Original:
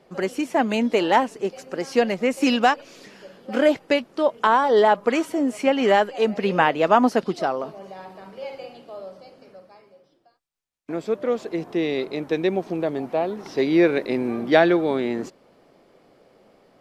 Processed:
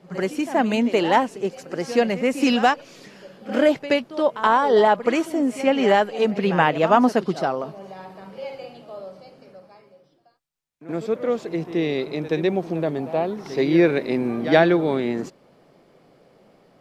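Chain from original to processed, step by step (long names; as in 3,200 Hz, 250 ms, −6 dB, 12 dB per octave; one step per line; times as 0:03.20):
parametric band 150 Hz +6.5 dB 0.67 octaves
echo ahead of the sound 76 ms −14 dB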